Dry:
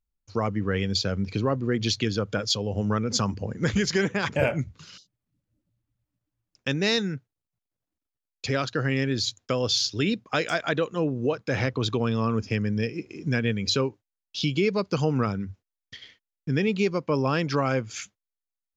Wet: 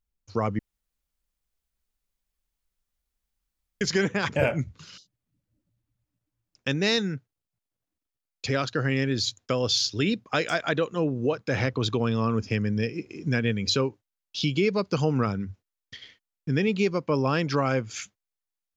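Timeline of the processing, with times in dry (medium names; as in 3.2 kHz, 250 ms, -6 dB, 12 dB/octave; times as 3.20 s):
0.59–3.81 s: room tone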